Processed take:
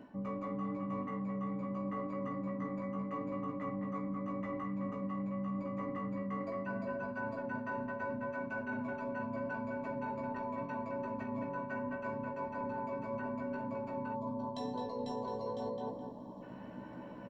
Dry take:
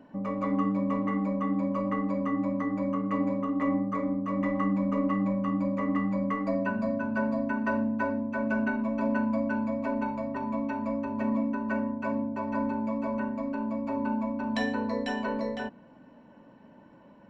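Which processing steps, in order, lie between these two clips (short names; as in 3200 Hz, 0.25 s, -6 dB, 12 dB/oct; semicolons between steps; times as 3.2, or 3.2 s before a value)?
in parallel at +1 dB: vocal rider 2 s; on the sum: tape echo 0.213 s, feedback 25%, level -4 dB, low-pass 2800 Hz; spectral gain 14.14–16.42, 1200–3100 Hz -20 dB; harmoniser -12 st -17 dB, -7 st -17 dB; doubler 16 ms -3.5 dB; reverse; compressor 6:1, threshold -32 dBFS, peak gain reduction 17.5 dB; reverse; gain -5 dB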